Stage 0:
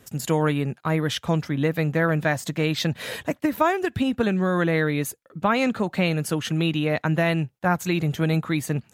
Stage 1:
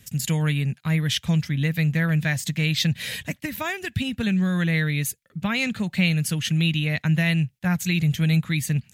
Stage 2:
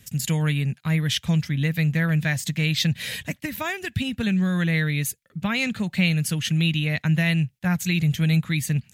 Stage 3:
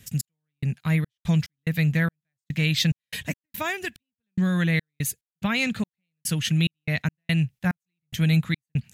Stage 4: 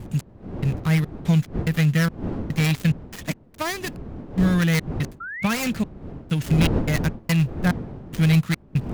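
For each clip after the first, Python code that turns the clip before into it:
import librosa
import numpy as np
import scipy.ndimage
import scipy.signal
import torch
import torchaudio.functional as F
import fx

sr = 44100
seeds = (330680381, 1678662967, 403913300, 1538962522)

y1 = fx.band_shelf(x, sr, hz=620.0, db=-15.0, octaves=2.7)
y1 = y1 * librosa.db_to_amplitude(4.0)
y2 = y1
y3 = fx.step_gate(y2, sr, bpm=72, pattern='x..xx.x.x', floor_db=-60.0, edge_ms=4.5)
y4 = fx.dead_time(y3, sr, dead_ms=0.15)
y4 = fx.dmg_wind(y4, sr, seeds[0], corner_hz=250.0, level_db=-34.0)
y4 = fx.spec_paint(y4, sr, seeds[1], shape='rise', start_s=5.2, length_s=0.34, low_hz=1300.0, high_hz=2800.0, level_db=-36.0)
y4 = y4 * librosa.db_to_amplitude(3.0)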